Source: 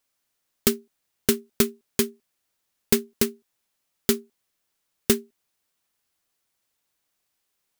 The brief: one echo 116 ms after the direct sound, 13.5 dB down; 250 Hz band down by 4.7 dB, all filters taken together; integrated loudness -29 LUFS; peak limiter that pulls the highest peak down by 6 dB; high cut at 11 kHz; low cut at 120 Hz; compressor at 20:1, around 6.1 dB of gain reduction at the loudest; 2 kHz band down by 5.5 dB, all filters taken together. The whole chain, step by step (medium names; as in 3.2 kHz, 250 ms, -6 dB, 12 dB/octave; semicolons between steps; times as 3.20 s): high-pass 120 Hz; low-pass 11 kHz; peaking EQ 250 Hz -5 dB; peaking EQ 2 kHz -7 dB; compression 20:1, threshold -24 dBFS; peak limiter -14 dBFS; delay 116 ms -13.5 dB; trim +9.5 dB